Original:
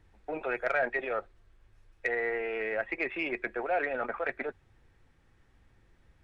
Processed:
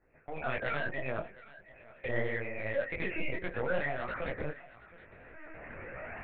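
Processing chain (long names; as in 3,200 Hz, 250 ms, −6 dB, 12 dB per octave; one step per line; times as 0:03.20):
compressor on every frequency bin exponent 0.6
camcorder AGC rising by 8.1 dB per second
high-pass filter 120 Hz 12 dB per octave
gate on every frequency bin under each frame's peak −15 dB strong
downward expander −41 dBFS
0:00.89–0:02.97: parametric band 1,200 Hz −13.5 dB 0.36 octaves
gain into a clipping stage and back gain 24.5 dB
phase shifter 0.46 Hz, delay 3.3 ms, feedback 53%
feedback echo with a high-pass in the loop 725 ms, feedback 34%, high-pass 420 Hz, level −18.5 dB
linear-prediction vocoder at 8 kHz pitch kept
micro pitch shift up and down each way 58 cents
level −1.5 dB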